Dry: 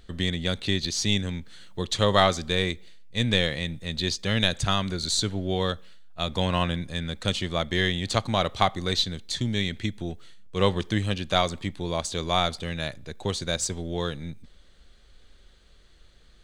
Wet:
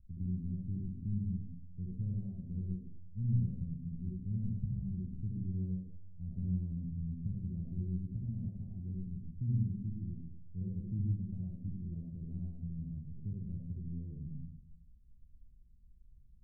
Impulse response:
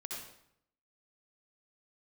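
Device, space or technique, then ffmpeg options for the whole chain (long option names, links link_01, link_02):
club heard from the street: -filter_complex "[0:a]alimiter=limit=-11.5dB:level=0:latency=1:release=252,lowpass=frequency=180:width=0.5412,lowpass=frequency=180:width=1.3066[link_01];[1:a]atrim=start_sample=2205[link_02];[link_01][link_02]afir=irnorm=-1:irlink=0,volume=-1.5dB"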